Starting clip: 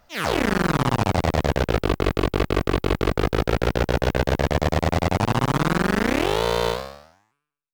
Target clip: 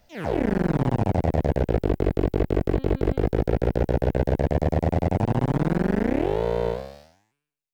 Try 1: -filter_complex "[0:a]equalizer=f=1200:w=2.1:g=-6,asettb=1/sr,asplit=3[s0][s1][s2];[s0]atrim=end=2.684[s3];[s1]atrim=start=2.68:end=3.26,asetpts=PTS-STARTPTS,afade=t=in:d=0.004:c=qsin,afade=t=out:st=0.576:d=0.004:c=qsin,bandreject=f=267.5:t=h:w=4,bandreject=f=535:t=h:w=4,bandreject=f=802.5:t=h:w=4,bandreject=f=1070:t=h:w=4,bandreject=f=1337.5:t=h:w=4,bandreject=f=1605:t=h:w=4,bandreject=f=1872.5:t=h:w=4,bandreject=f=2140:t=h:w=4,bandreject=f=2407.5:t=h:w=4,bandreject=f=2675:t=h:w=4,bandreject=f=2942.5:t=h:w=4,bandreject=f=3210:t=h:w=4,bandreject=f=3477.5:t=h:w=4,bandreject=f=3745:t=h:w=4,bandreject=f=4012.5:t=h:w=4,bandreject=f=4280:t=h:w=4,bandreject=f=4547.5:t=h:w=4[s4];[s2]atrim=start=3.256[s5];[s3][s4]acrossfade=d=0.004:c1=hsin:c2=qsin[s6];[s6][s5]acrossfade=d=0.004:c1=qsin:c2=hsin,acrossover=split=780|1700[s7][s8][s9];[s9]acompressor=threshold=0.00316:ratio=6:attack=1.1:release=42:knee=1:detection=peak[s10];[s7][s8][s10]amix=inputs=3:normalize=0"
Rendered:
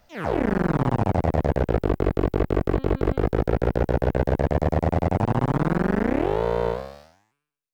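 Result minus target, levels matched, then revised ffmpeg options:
1 kHz band +2.5 dB
-filter_complex "[0:a]equalizer=f=1200:w=2.1:g=-14.5,asettb=1/sr,asplit=3[s0][s1][s2];[s0]atrim=end=2.684[s3];[s1]atrim=start=2.68:end=3.26,asetpts=PTS-STARTPTS,afade=t=in:d=0.004:c=qsin,afade=t=out:st=0.576:d=0.004:c=qsin,bandreject=f=267.5:t=h:w=4,bandreject=f=535:t=h:w=4,bandreject=f=802.5:t=h:w=4,bandreject=f=1070:t=h:w=4,bandreject=f=1337.5:t=h:w=4,bandreject=f=1605:t=h:w=4,bandreject=f=1872.5:t=h:w=4,bandreject=f=2140:t=h:w=4,bandreject=f=2407.5:t=h:w=4,bandreject=f=2675:t=h:w=4,bandreject=f=2942.5:t=h:w=4,bandreject=f=3210:t=h:w=4,bandreject=f=3477.5:t=h:w=4,bandreject=f=3745:t=h:w=4,bandreject=f=4012.5:t=h:w=4,bandreject=f=4280:t=h:w=4,bandreject=f=4547.5:t=h:w=4[s4];[s2]atrim=start=3.256[s5];[s3][s4]acrossfade=d=0.004:c1=hsin:c2=qsin[s6];[s6][s5]acrossfade=d=0.004:c1=qsin:c2=hsin,acrossover=split=780|1700[s7][s8][s9];[s9]acompressor=threshold=0.00316:ratio=6:attack=1.1:release=42:knee=1:detection=peak[s10];[s7][s8][s10]amix=inputs=3:normalize=0"

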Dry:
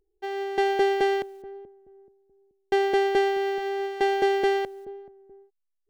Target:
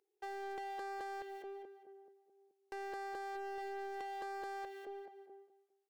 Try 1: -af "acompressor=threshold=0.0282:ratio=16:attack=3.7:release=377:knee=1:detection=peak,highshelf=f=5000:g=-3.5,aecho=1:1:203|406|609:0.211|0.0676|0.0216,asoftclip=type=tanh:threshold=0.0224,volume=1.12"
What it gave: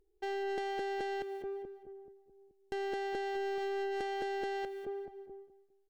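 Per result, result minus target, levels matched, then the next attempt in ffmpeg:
saturation: distortion -8 dB; 500 Hz band +3.0 dB
-af "acompressor=threshold=0.0282:ratio=16:attack=3.7:release=377:knee=1:detection=peak,highshelf=f=5000:g=-3.5,aecho=1:1:203|406|609:0.211|0.0676|0.0216,asoftclip=type=tanh:threshold=0.00891,volume=1.12"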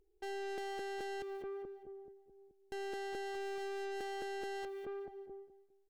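500 Hz band +3.0 dB
-af "acompressor=threshold=0.0282:ratio=16:attack=3.7:release=377:knee=1:detection=peak,highpass=590,highshelf=f=5000:g=-3.5,aecho=1:1:203|406|609:0.211|0.0676|0.0216,asoftclip=type=tanh:threshold=0.00891,volume=1.12"

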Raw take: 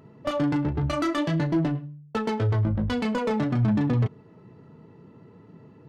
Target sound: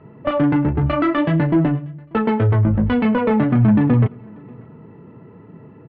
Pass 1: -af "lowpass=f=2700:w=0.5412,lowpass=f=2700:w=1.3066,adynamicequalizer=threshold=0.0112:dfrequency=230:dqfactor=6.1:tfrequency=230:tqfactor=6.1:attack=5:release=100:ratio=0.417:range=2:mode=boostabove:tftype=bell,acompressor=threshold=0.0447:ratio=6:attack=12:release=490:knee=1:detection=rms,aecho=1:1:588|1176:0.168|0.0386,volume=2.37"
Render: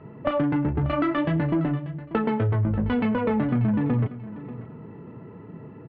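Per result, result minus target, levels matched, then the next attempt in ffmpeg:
compression: peak gain reduction +9.5 dB; echo-to-direct +11.5 dB
-af "lowpass=f=2700:w=0.5412,lowpass=f=2700:w=1.3066,adynamicequalizer=threshold=0.0112:dfrequency=230:dqfactor=6.1:tfrequency=230:tqfactor=6.1:attack=5:release=100:ratio=0.417:range=2:mode=boostabove:tftype=bell,aecho=1:1:588|1176:0.168|0.0386,volume=2.37"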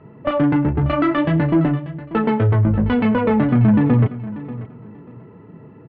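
echo-to-direct +11.5 dB
-af "lowpass=f=2700:w=0.5412,lowpass=f=2700:w=1.3066,adynamicequalizer=threshold=0.0112:dfrequency=230:dqfactor=6.1:tfrequency=230:tqfactor=6.1:attack=5:release=100:ratio=0.417:range=2:mode=boostabove:tftype=bell,aecho=1:1:588|1176:0.0447|0.0103,volume=2.37"

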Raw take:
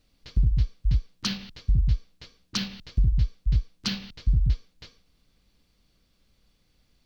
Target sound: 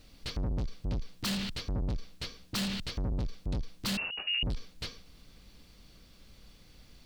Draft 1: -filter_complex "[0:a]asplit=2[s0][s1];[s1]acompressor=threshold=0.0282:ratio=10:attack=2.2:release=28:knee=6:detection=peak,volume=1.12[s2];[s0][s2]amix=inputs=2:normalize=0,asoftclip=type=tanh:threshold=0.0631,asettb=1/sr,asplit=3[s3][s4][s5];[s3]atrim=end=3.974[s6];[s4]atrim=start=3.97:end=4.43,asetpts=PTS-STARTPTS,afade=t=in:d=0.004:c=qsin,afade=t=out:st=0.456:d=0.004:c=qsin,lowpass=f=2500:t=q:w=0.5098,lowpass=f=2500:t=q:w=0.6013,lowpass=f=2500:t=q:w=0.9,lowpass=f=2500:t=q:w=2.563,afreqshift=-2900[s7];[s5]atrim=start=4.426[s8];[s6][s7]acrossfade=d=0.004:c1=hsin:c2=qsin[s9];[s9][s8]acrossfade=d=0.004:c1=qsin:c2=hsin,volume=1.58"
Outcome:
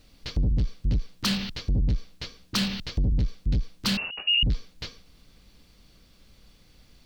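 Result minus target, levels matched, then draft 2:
saturation: distortion -5 dB
-filter_complex "[0:a]asplit=2[s0][s1];[s1]acompressor=threshold=0.0282:ratio=10:attack=2.2:release=28:knee=6:detection=peak,volume=1.12[s2];[s0][s2]amix=inputs=2:normalize=0,asoftclip=type=tanh:threshold=0.02,asettb=1/sr,asplit=3[s3][s4][s5];[s3]atrim=end=3.974[s6];[s4]atrim=start=3.97:end=4.43,asetpts=PTS-STARTPTS,afade=t=in:d=0.004:c=qsin,afade=t=out:st=0.456:d=0.004:c=qsin,lowpass=f=2500:t=q:w=0.5098,lowpass=f=2500:t=q:w=0.6013,lowpass=f=2500:t=q:w=0.9,lowpass=f=2500:t=q:w=2.563,afreqshift=-2900[s7];[s5]atrim=start=4.426[s8];[s6][s7]acrossfade=d=0.004:c1=hsin:c2=qsin[s9];[s9][s8]acrossfade=d=0.004:c1=qsin:c2=hsin,volume=1.58"

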